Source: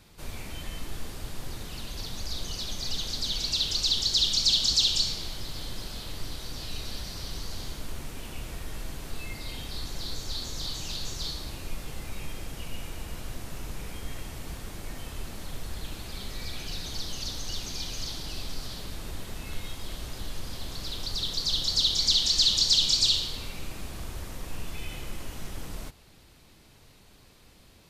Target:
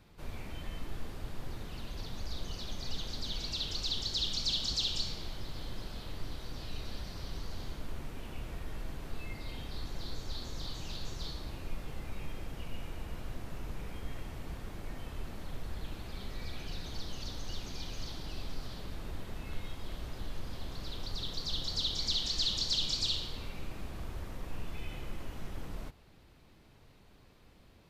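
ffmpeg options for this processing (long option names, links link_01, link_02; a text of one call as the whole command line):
ffmpeg -i in.wav -af "equalizer=frequency=9400:width=0.36:gain=-11.5,volume=-3dB" out.wav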